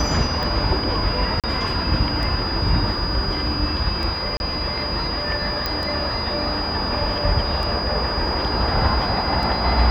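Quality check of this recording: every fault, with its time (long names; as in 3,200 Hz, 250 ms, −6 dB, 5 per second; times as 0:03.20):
scratch tick 33 1/3 rpm
whistle 4,900 Hz −26 dBFS
0:01.40–0:01.44: drop-out 37 ms
0:04.37–0:04.40: drop-out 31 ms
0:05.66: click −8 dBFS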